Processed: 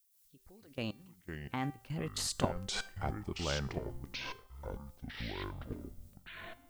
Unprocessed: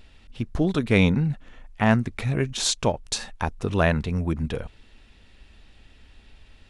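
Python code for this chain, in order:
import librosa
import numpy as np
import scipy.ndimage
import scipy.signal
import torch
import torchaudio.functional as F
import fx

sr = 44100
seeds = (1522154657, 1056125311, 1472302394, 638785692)

y = fx.doppler_pass(x, sr, speed_mps=53, closest_m=6.8, pass_at_s=2.55)
y = fx.noise_reduce_blind(y, sr, reduce_db=15)
y = fx.level_steps(y, sr, step_db=21)
y = fx.dmg_noise_colour(y, sr, seeds[0], colour='violet', level_db=-77.0)
y = fx.comb_fb(y, sr, f0_hz=390.0, decay_s=0.46, harmonics='all', damping=0.0, mix_pct=60)
y = fx.echo_pitch(y, sr, ms=117, semitones=-7, count=3, db_per_echo=-6.0)
y = fx.am_noise(y, sr, seeds[1], hz=5.7, depth_pct=55)
y = y * 10.0 ** (16.0 / 20.0)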